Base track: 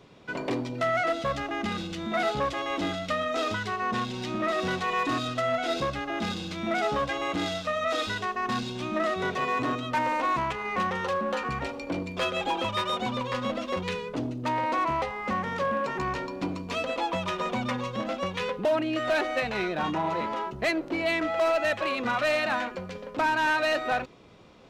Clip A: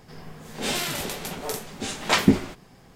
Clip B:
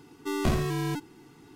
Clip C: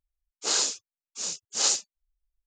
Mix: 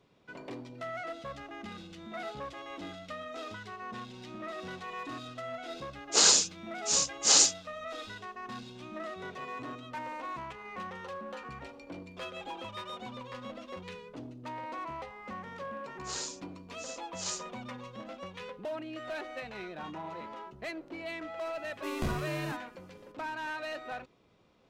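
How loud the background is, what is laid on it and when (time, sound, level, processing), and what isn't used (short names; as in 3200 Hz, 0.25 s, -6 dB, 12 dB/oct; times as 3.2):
base track -13 dB
5.7 add C -9 dB + maximiser +14 dB
15.62 add C -13.5 dB
21.57 add B -7.5 dB
not used: A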